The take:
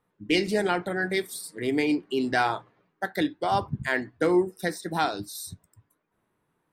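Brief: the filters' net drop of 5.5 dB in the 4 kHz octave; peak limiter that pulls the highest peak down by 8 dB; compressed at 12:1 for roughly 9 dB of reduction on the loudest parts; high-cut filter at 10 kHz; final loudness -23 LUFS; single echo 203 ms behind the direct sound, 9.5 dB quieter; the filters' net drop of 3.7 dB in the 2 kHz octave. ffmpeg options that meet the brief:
-af "lowpass=10000,equalizer=f=2000:t=o:g=-3.5,equalizer=f=4000:t=o:g=-6,acompressor=threshold=0.0501:ratio=12,alimiter=level_in=1.06:limit=0.0631:level=0:latency=1,volume=0.944,aecho=1:1:203:0.335,volume=3.98"

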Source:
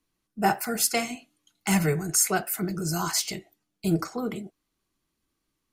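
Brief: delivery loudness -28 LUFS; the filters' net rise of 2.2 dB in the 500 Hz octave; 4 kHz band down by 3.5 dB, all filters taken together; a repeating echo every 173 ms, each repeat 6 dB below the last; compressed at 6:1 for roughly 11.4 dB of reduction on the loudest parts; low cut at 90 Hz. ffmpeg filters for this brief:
-af "highpass=90,equalizer=f=500:t=o:g=3,equalizer=f=4000:t=o:g=-5,acompressor=threshold=0.0355:ratio=6,aecho=1:1:173|346|519|692|865|1038:0.501|0.251|0.125|0.0626|0.0313|0.0157,volume=1.68"

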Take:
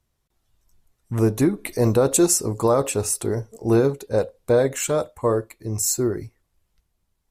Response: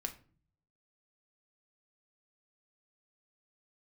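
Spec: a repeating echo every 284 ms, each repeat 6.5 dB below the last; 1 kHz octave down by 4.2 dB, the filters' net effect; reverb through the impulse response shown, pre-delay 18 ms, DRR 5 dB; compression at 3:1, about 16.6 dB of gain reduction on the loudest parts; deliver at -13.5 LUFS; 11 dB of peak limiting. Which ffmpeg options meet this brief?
-filter_complex "[0:a]equalizer=f=1000:t=o:g=-5.5,acompressor=threshold=0.0126:ratio=3,alimiter=level_in=2.66:limit=0.0631:level=0:latency=1,volume=0.376,aecho=1:1:284|568|852|1136|1420|1704:0.473|0.222|0.105|0.0491|0.0231|0.0109,asplit=2[s0][s1];[1:a]atrim=start_sample=2205,adelay=18[s2];[s1][s2]afir=irnorm=-1:irlink=0,volume=0.596[s3];[s0][s3]amix=inputs=2:normalize=0,volume=20"

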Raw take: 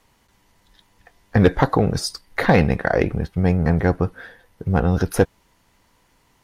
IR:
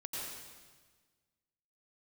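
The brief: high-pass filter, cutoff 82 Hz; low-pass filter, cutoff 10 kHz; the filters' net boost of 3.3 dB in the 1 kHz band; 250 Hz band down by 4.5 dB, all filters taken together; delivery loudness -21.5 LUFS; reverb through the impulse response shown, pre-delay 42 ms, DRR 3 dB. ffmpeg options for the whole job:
-filter_complex "[0:a]highpass=82,lowpass=10000,equalizer=f=250:t=o:g=-7,equalizer=f=1000:t=o:g=5,asplit=2[s0][s1];[1:a]atrim=start_sample=2205,adelay=42[s2];[s1][s2]afir=irnorm=-1:irlink=0,volume=0.631[s3];[s0][s3]amix=inputs=2:normalize=0,volume=0.841"

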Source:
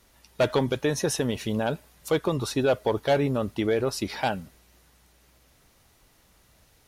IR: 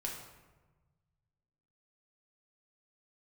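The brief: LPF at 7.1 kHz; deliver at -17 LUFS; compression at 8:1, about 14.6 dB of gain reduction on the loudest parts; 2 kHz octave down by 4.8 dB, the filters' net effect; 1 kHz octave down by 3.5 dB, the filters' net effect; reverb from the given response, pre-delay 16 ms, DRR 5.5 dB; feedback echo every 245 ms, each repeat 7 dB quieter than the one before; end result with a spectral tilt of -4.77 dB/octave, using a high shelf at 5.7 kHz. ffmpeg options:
-filter_complex "[0:a]lowpass=7100,equalizer=f=1000:t=o:g=-4,equalizer=f=2000:t=o:g=-6,highshelf=f=5700:g=7.5,acompressor=threshold=0.0178:ratio=8,aecho=1:1:245|490|735|980|1225:0.447|0.201|0.0905|0.0407|0.0183,asplit=2[s0][s1];[1:a]atrim=start_sample=2205,adelay=16[s2];[s1][s2]afir=irnorm=-1:irlink=0,volume=0.501[s3];[s0][s3]amix=inputs=2:normalize=0,volume=10.6"

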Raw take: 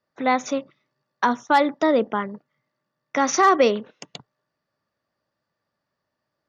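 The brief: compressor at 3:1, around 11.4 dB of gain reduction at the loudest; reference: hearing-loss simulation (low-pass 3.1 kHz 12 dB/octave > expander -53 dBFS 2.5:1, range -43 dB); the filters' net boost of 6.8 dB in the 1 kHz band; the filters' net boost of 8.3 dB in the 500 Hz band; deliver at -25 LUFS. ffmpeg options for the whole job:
-af "equalizer=f=500:t=o:g=8,equalizer=f=1000:t=o:g=6,acompressor=threshold=0.1:ratio=3,lowpass=3100,agate=range=0.00708:threshold=0.00224:ratio=2.5,volume=0.891"

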